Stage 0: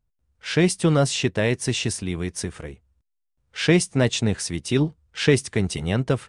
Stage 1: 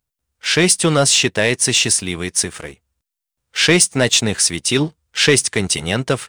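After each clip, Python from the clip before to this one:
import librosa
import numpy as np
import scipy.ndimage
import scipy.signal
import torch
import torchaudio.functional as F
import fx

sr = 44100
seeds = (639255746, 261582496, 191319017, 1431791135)

y = fx.tilt_eq(x, sr, slope=2.5)
y = fx.leveller(y, sr, passes=1)
y = y * 10.0 ** (4.0 / 20.0)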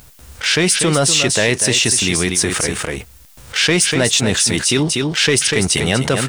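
y = x + 10.0 ** (-10.5 / 20.0) * np.pad(x, (int(243 * sr / 1000.0), 0))[:len(x)]
y = fx.env_flatten(y, sr, amount_pct=70)
y = y * 10.0 ** (-3.5 / 20.0)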